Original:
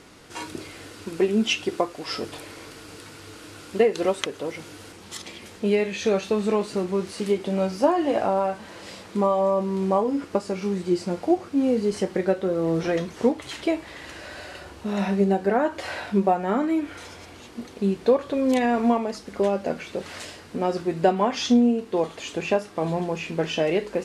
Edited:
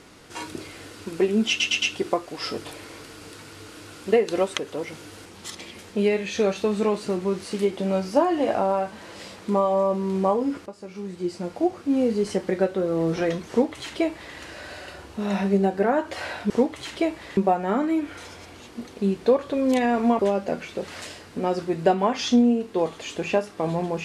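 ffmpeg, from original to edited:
-filter_complex "[0:a]asplit=8[a][b][c][d][e][f][g][h];[a]atrim=end=1.602[i];[b]atrim=start=1.488:end=1.602[j];[c]atrim=start=1.488:end=1.602[k];[d]atrim=start=1.488:end=10.33,asetpts=PTS-STARTPTS,afade=t=out:st=8.838:d=0.004:c=hsin:silence=0.16788[l];[e]atrim=start=10.33:end=16.172,asetpts=PTS-STARTPTS,afade=t=in:d=1.3:silence=0.16788[m];[f]atrim=start=13.158:end=14.032[n];[g]atrim=start=16.168:end=18.992[o];[h]atrim=start=19.368[p];[i][j]acrossfade=d=0.004:c1=hsin:c2=hsin[q];[q][k]acrossfade=d=0.004:c1=hsin:c2=hsin[r];[l][m]concat=n=2:v=0:a=1[s];[r][s]acrossfade=d=0.004:c1=hsin:c2=hsin[t];[t][n]acrossfade=d=0.004:c1=hsin:c2=hsin[u];[u][o]acrossfade=d=0.004:c1=hsin:c2=hsin[v];[v][p]acrossfade=d=0.004:c1=hsin:c2=hsin"

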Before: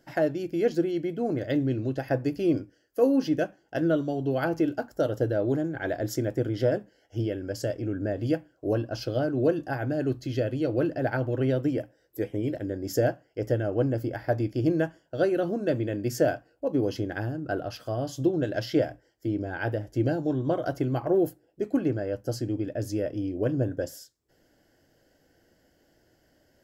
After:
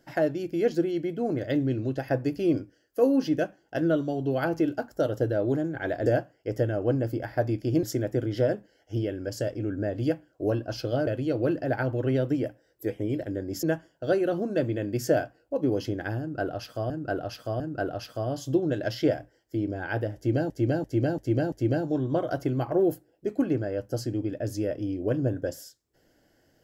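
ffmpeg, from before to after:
-filter_complex "[0:a]asplit=11[a][b][c][d][e][f][g][h][i][j][k];[a]atrim=end=6.062[l];[b]atrim=start=12.968:end=14.742[m];[c]atrim=start=6.058:end=9.302[n];[d]atrim=start=10.408:end=12.972[o];[e]atrim=start=14.738:end=18.012[p];[f]atrim=start=17.308:end=18.012[q];[g]atrim=start=17.308:end=20.212[r];[h]atrim=start=19.868:end=20.212[s];[i]atrim=start=19.868:end=20.212[t];[j]atrim=start=19.868:end=20.212[u];[k]atrim=start=19.868[v];[l][m]acrossfade=d=0.004:c1=hsin:c2=hsin[w];[w][n]acrossfade=d=0.004:c1=hsin:c2=hsin[x];[x][o]acrossfade=d=0.004:c1=hsin:c2=hsin[y];[y][p]acrossfade=d=0.004:c1=hsin:c2=hsin[z];[z][q]acrossfade=d=0.004:c1=hsin:c2=hsin[aa];[aa][r]acrossfade=d=0.004:c1=hsin:c2=hsin[ab];[ab][s]acrossfade=d=0.004:c1=hsin:c2=hsin[ac];[ac][t]acrossfade=d=0.004:c1=hsin:c2=hsin[ad];[ad][u]acrossfade=d=0.004:c1=hsin:c2=hsin[ae];[ae][v]acrossfade=d=0.004:c1=hsin:c2=hsin"

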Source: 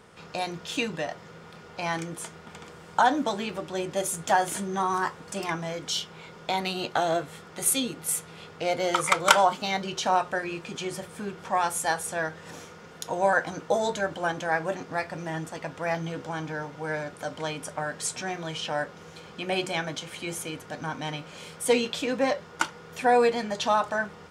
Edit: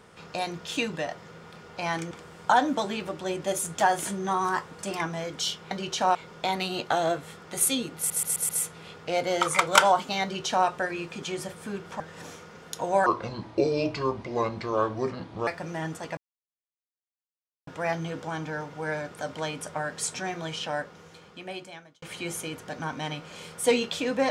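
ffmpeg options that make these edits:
-filter_complex "[0:a]asplit=13[a][b][c][d][e][f][g][h][i][j][k][l][m];[a]atrim=end=2.112[n];[b]atrim=start=2.598:end=6.202[o];[c]atrim=start=9.758:end=10.202[p];[d]atrim=start=6.198:end=8.152[q];[e]atrim=start=8.018:end=8.152[r];[f]atrim=start=8.018:end=8.152[s];[g]atrim=start=8.018:end=8.152[t];[h]atrim=start=8.018:end=11.532[u];[i]atrim=start=12.288:end=13.354[v];[j]atrim=start=13.35:end=14.99,asetpts=PTS-STARTPTS,asetrate=29988,aresample=44100[w];[k]atrim=start=14.986:end=15.69,asetpts=PTS-STARTPTS,afade=t=out:st=0.7:d=0.004:c=hsin,apad=pad_dur=1.5[x];[l]atrim=start=15.69:end=20.04,asetpts=PTS-STARTPTS,afade=t=in:d=0.004:c=hsin,afade=t=out:st=2.81:d=1.54[y];[m]atrim=start=20.04,asetpts=PTS-STARTPTS,afade=t=in:d=0.004:c=hsin[z];[n][o]acrossfade=d=0.004:c1=hsin:c2=hsin[aa];[aa][p]acrossfade=d=0.004:c1=hsin:c2=hsin[ab];[ab][q]acrossfade=d=0.004:c1=hsin:c2=hsin[ac];[ac][r]acrossfade=d=0.004:c1=hsin:c2=hsin[ad];[ad][s]acrossfade=d=0.004:c1=hsin:c2=hsin[ae];[ae][t]acrossfade=d=0.004:c1=hsin:c2=hsin[af];[af][u]acrossfade=d=0.004:c1=hsin:c2=hsin[ag];[ag][v]acrossfade=d=0.004:c1=hsin:c2=hsin[ah];[ah][w]acrossfade=d=0.004:c1=hsin:c2=hsin[ai];[x][y][z]concat=n=3:v=0:a=1[aj];[ai][aj]acrossfade=d=0.004:c1=hsin:c2=hsin"

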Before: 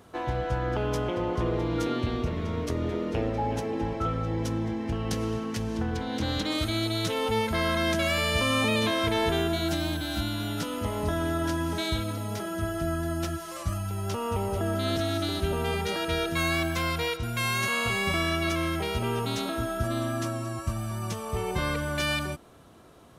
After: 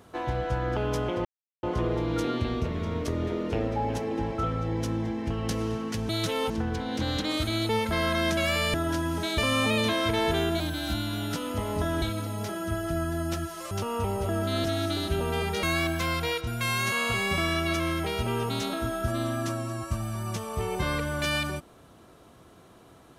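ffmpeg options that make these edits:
-filter_complex "[0:a]asplit=11[a][b][c][d][e][f][g][h][i][j][k];[a]atrim=end=1.25,asetpts=PTS-STARTPTS,afade=t=out:st=1.246:d=0.004:c=hsin,apad=pad_dur=0.38[l];[b]atrim=start=1.25:end=5.712,asetpts=PTS-STARTPTS,afade=t=in:d=0.004:c=hsin[m];[c]atrim=start=6.898:end=7.312[n];[d]atrim=start=5.708:end=6.902[o];[e]atrim=start=7.308:end=8.362[p];[f]atrim=start=11.288:end=11.932[q];[g]atrim=start=8.358:end=9.582[r];[h]atrim=start=9.868:end=11.292[s];[i]atrim=start=11.928:end=13.622[t];[j]atrim=start=14.028:end=15.952[u];[k]atrim=start=16.388[v];[l][m]concat=n=2:v=0:a=1[w];[w][n]acrossfade=d=0.004:c1=hsin:c2=hsin[x];[x][o]acrossfade=d=0.004:c1=hsin:c2=hsin[y];[y][p]acrossfade=d=0.004:c1=hsin:c2=hsin[z];[z][q]acrossfade=d=0.004:c1=hsin:c2=hsin[aa];[aa][r]acrossfade=d=0.004:c1=hsin:c2=hsin[ab];[ab][s]acrossfade=d=0.004:c1=hsin:c2=hsin[ac];[ac][t]acrossfade=d=0.004:c1=hsin:c2=hsin[ad];[ad][u]acrossfade=d=0.004:c1=hsin:c2=hsin[ae];[ae][v]acrossfade=d=0.004:c1=hsin:c2=hsin"

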